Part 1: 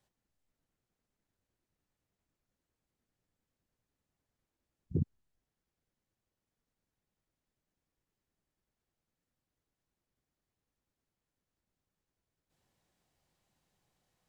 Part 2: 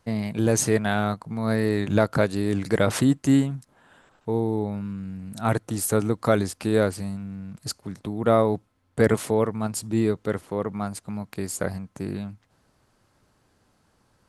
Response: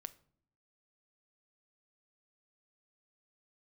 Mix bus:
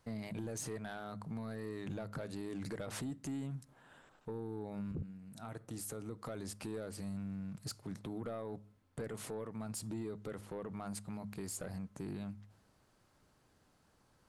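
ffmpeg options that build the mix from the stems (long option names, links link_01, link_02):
-filter_complex "[0:a]alimiter=limit=-23.5dB:level=0:latency=1,volume=-3.5dB,asplit=2[link_01][link_02];[1:a]acompressor=threshold=-26dB:ratio=6,volume=-9dB,asplit=2[link_03][link_04];[link_04]volume=-3dB[link_05];[link_02]apad=whole_len=629981[link_06];[link_03][link_06]sidechaincompress=threshold=-55dB:ratio=8:attack=16:release=934[link_07];[2:a]atrim=start_sample=2205[link_08];[link_05][link_08]afir=irnorm=-1:irlink=0[link_09];[link_01][link_07][link_09]amix=inputs=3:normalize=0,bandreject=frequency=103.1:width_type=h:width=4,bandreject=frequency=206.2:width_type=h:width=4,asoftclip=type=tanh:threshold=-29dB,alimiter=level_in=10.5dB:limit=-24dB:level=0:latency=1:release=32,volume=-10.5dB"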